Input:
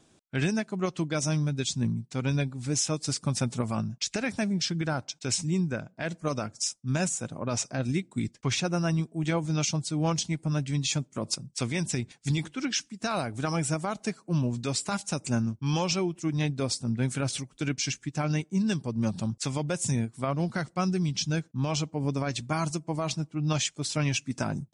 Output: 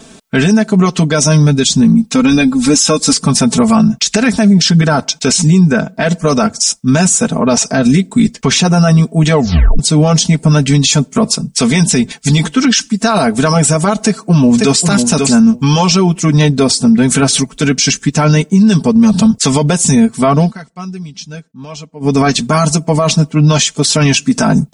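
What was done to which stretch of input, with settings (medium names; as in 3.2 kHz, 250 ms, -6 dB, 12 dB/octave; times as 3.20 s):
1.94–3.13 s: comb 3.7 ms, depth 71%
9.32 s: tape stop 0.47 s
14.03–14.84 s: echo throw 540 ms, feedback 10%, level -8 dB
20.39–22.15 s: dip -23 dB, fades 0.15 s
whole clip: comb 4.5 ms, depth 90%; dynamic bell 2.3 kHz, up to -4 dB, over -46 dBFS, Q 2.9; loudness maximiser +23 dB; trim -1 dB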